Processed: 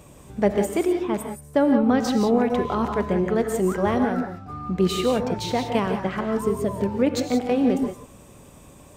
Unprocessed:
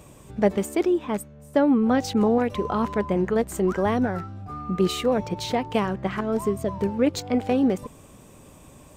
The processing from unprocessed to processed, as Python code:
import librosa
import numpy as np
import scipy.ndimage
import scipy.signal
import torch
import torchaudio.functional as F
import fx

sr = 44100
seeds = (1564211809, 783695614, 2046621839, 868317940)

y = fx.rev_gated(x, sr, seeds[0], gate_ms=200, shape='rising', drr_db=5.0)